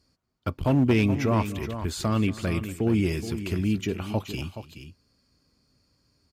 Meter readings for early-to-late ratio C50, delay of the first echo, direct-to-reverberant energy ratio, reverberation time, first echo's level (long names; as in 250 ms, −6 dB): no reverb audible, 237 ms, no reverb audible, no reverb audible, −18.5 dB